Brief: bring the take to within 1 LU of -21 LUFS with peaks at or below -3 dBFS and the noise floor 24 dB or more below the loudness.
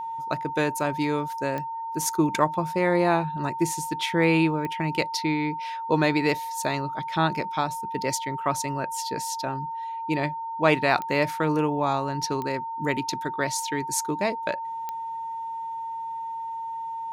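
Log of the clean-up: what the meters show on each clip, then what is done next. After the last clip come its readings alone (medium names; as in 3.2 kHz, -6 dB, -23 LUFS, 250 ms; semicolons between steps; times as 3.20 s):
clicks found 5; steady tone 910 Hz; tone level -30 dBFS; loudness -26.5 LUFS; peak level -6.5 dBFS; loudness target -21.0 LUFS
-> de-click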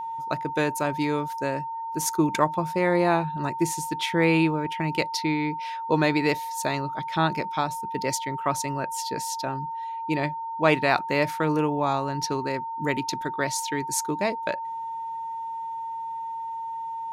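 clicks found 0; steady tone 910 Hz; tone level -30 dBFS
-> band-stop 910 Hz, Q 30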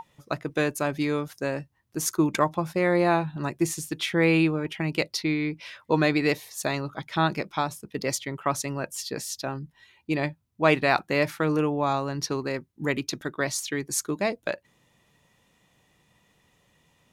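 steady tone not found; loudness -27.0 LUFS; peak level -7.0 dBFS; loudness target -21.0 LUFS
-> trim +6 dB; peak limiter -3 dBFS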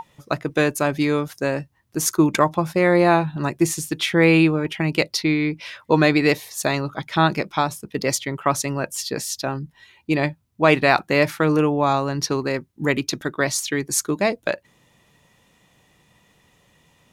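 loudness -21.0 LUFS; peak level -3.0 dBFS; noise floor -61 dBFS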